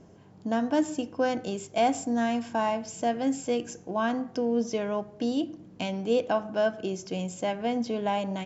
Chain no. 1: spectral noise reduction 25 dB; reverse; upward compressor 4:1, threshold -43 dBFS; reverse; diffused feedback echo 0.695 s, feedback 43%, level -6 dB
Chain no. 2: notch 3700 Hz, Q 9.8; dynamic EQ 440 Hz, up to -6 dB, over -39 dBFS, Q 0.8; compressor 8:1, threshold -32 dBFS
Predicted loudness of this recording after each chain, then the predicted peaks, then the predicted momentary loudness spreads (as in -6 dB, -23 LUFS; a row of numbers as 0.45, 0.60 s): -28.0, -37.5 LUFS; -12.0, -19.5 dBFS; 5, 3 LU